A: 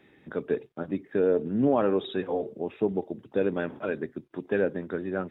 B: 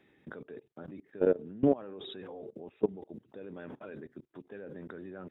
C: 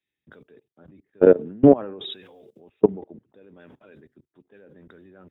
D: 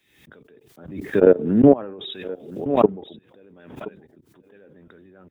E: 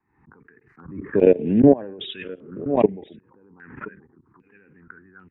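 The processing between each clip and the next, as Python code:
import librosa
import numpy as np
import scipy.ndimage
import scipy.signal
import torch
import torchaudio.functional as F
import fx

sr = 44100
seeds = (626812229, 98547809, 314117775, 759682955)

y1 = fx.level_steps(x, sr, step_db=22)
y2 = fx.band_widen(y1, sr, depth_pct=100)
y2 = F.gain(torch.from_numpy(y2), 3.5).numpy()
y3 = y2 + 10.0 ** (-18.5 / 20.0) * np.pad(y2, (int(1024 * sr / 1000.0), 0))[:len(y2)]
y3 = fx.pre_swell(y3, sr, db_per_s=74.0)
y4 = fx.env_phaser(y3, sr, low_hz=580.0, high_hz=1300.0, full_db=-18.5)
y4 = fx.filter_held_lowpass(y4, sr, hz=2.5, low_hz=930.0, high_hz=3000.0)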